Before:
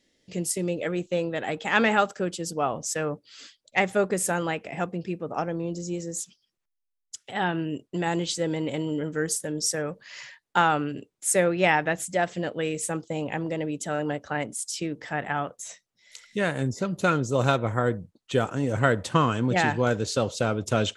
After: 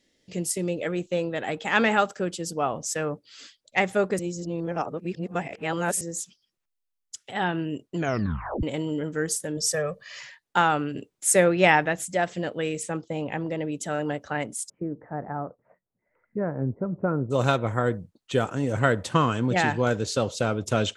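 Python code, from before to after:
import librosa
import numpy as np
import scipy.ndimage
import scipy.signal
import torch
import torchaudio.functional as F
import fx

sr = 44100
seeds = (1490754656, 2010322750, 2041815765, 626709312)

y = fx.comb(x, sr, ms=1.7, depth=0.75, at=(9.57, 10.19))
y = fx.air_absorb(y, sr, metres=86.0, at=(12.83, 13.72))
y = fx.gaussian_blur(y, sr, sigma=7.6, at=(14.68, 17.3), fade=0.02)
y = fx.edit(y, sr, fx.reverse_span(start_s=4.19, length_s=1.82),
    fx.tape_stop(start_s=7.96, length_s=0.67),
    fx.clip_gain(start_s=10.95, length_s=0.91, db=3.0), tone=tone)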